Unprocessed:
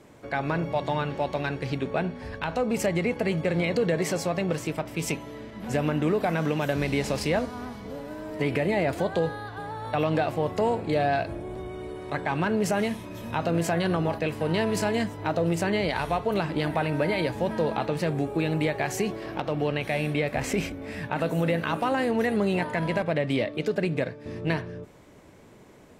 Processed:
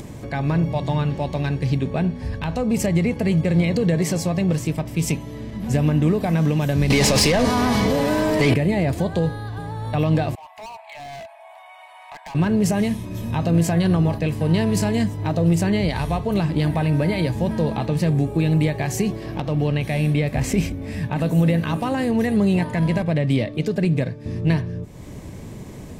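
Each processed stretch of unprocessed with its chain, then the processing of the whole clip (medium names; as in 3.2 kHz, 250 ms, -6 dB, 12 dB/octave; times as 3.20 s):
6.90–8.54 s: overdrive pedal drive 19 dB, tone 5.9 kHz, clips at -13 dBFS + level flattener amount 70%
10.35–12.35 s: rippled Chebyshev high-pass 640 Hz, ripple 9 dB + peaking EQ 5.9 kHz -13 dB 2.1 oct + hard clipper -37.5 dBFS
whole clip: upward compressor, threshold -33 dBFS; tone controls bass +13 dB, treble +6 dB; band-stop 1.4 kHz, Q 7.3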